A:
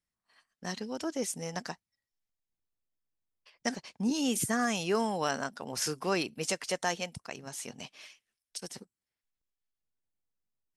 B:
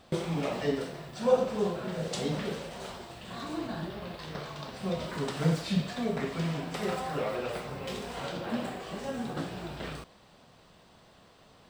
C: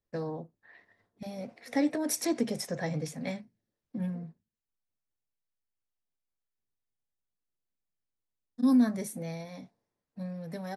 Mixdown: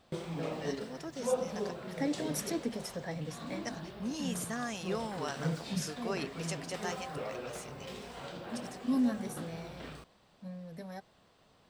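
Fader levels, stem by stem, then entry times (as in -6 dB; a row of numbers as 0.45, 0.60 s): -8.0, -7.5, -6.0 dB; 0.00, 0.00, 0.25 s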